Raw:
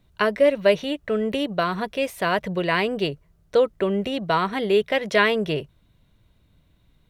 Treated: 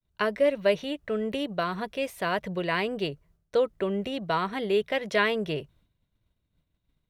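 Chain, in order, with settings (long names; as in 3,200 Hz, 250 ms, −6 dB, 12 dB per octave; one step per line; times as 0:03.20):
downward expander −51 dBFS
level −5.5 dB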